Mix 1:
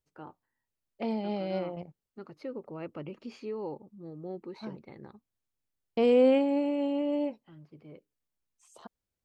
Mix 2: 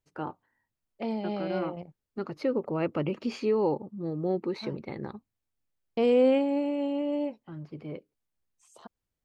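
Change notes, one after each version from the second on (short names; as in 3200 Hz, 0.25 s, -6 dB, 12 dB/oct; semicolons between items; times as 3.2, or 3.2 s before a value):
first voice +11.0 dB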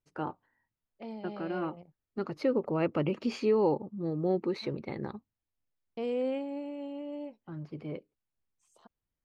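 second voice -10.0 dB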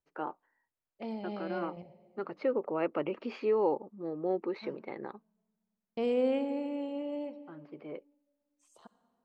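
first voice: add BPF 360–2500 Hz; reverb: on, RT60 1.9 s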